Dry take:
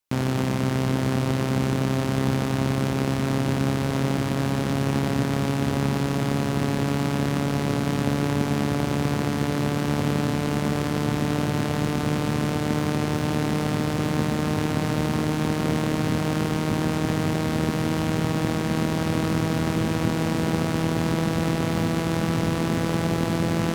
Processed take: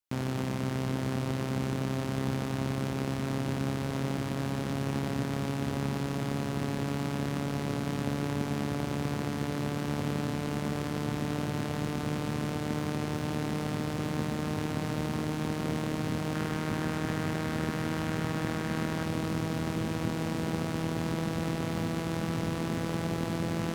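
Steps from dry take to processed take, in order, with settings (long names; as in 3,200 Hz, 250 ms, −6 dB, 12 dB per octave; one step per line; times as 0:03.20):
0:16.35–0:19.05: parametric band 1,600 Hz +5 dB 0.96 octaves
level −8 dB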